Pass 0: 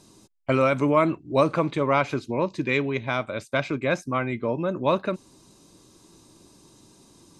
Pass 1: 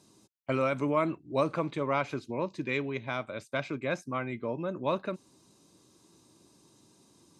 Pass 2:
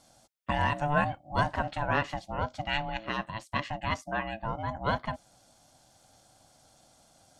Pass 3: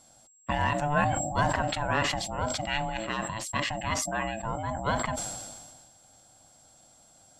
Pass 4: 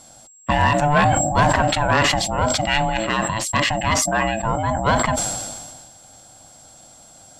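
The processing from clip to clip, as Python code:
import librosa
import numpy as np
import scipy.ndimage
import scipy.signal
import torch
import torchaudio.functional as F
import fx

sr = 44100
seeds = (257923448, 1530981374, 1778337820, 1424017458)

y1 = scipy.signal.sosfilt(scipy.signal.butter(2, 86.0, 'highpass', fs=sr, output='sos'), x)
y1 = F.gain(torch.from_numpy(y1), -7.5).numpy()
y2 = fx.low_shelf(y1, sr, hz=390.0, db=-6.0)
y2 = y2 * np.sin(2.0 * np.pi * 440.0 * np.arange(len(y2)) / sr)
y2 = fx.peak_eq(y2, sr, hz=610.0, db=3.0, octaves=0.72)
y2 = F.gain(torch.from_numpy(y2), 5.0).numpy()
y3 = y2 + 10.0 ** (-58.0 / 20.0) * np.sin(2.0 * np.pi * 7600.0 * np.arange(len(y2)) / sr)
y3 = fx.sustainer(y3, sr, db_per_s=34.0)
y4 = fx.fold_sine(y3, sr, drive_db=6, ceiling_db=-9.5)
y4 = F.gain(torch.from_numpy(y4), 1.5).numpy()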